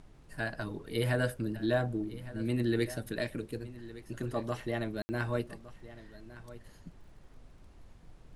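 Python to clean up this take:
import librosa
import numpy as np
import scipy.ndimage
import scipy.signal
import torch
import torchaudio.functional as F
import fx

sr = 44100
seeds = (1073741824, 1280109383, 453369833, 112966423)

y = fx.fix_declick_ar(x, sr, threshold=6.5)
y = fx.fix_ambience(y, sr, seeds[0], print_start_s=7.53, print_end_s=8.03, start_s=5.02, end_s=5.09)
y = fx.noise_reduce(y, sr, print_start_s=7.53, print_end_s=8.03, reduce_db=25.0)
y = fx.fix_echo_inverse(y, sr, delay_ms=1161, level_db=-17.0)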